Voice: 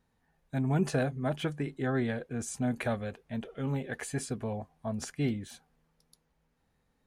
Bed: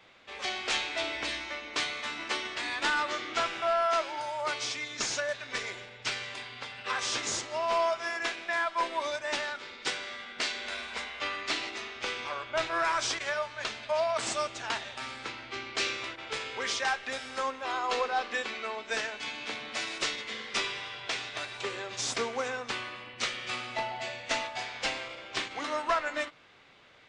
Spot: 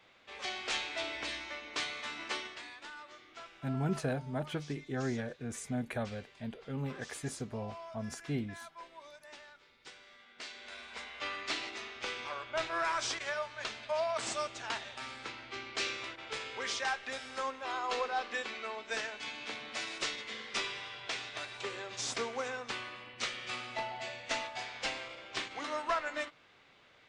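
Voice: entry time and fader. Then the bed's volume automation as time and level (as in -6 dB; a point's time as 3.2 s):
3.10 s, -5.0 dB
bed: 2.38 s -5 dB
2.87 s -20 dB
9.89 s -20 dB
11.3 s -4.5 dB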